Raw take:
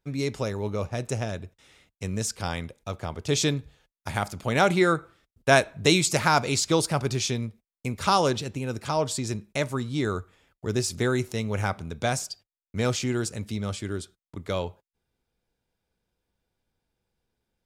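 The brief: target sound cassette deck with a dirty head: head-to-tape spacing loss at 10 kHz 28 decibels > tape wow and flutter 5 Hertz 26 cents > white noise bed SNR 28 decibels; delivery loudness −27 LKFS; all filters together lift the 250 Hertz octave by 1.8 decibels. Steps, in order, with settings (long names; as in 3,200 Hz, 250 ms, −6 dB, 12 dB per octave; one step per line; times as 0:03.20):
head-to-tape spacing loss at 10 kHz 28 dB
parametric band 250 Hz +3.5 dB
tape wow and flutter 5 Hz 26 cents
white noise bed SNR 28 dB
level +1.5 dB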